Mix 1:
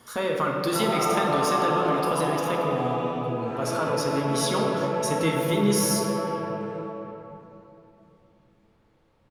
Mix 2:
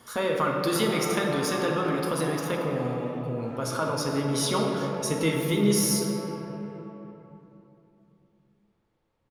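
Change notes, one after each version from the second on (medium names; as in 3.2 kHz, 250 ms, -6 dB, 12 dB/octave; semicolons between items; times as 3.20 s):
background: send -11.5 dB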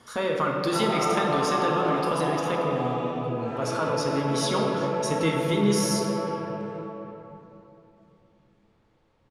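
background +9.0 dB; master: add low-pass 8.2 kHz 12 dB/octave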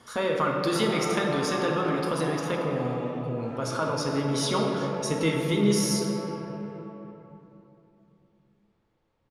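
background -7.5 dB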